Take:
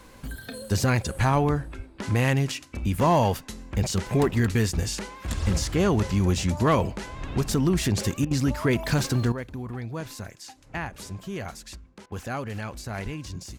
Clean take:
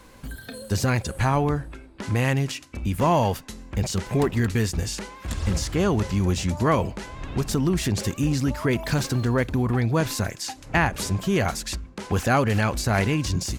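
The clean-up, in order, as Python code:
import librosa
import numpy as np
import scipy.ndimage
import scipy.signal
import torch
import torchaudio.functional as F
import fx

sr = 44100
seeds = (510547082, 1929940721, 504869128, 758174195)

y = fx.fix_declip(x, sr, threshold_db=-13.5)
y = fx.highpass(y, sr, hz=140.0, slope=24, at=(1.76, 1.88), fade=0.02)
y = fx.highpass(y, sr, hz=140.0, slope=24, at=(13.04, 13.16), fade=0.02)
y = fx.fix_interpolate(y, sr, at_s=(8.25, 12.06), length_ms=58.0)
y = fx.fix_level(y, sr, at_s=9.32, step_db=11.5)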